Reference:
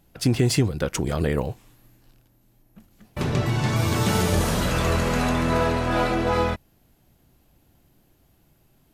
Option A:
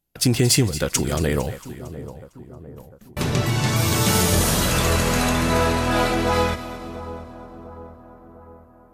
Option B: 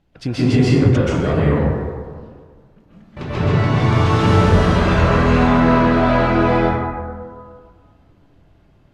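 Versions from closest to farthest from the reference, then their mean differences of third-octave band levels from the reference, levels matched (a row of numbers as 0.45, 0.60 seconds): A, B; 4.0, 8.0 decibels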